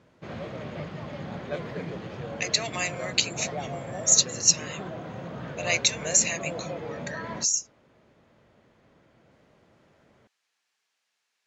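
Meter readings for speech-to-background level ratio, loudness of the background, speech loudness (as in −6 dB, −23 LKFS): 12.5 dB, −36.5 LKFS, −24.0 LKFS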